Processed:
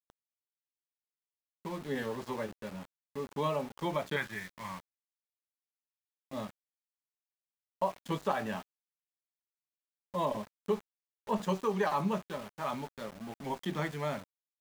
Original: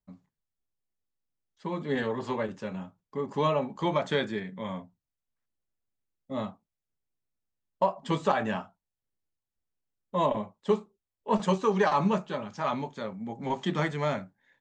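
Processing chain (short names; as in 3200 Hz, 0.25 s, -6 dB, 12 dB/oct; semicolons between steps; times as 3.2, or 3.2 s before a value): 4.16–6.33 ten-band EQ 125 Hz +4 dB, 250 Hz -7 dB, 500 Hz -11 dB, 1000 Hz +7 dB, 2000 Hz +9 dB, 4000 Hz -10 dB; sample gate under -38 dBFS; gain -6 dB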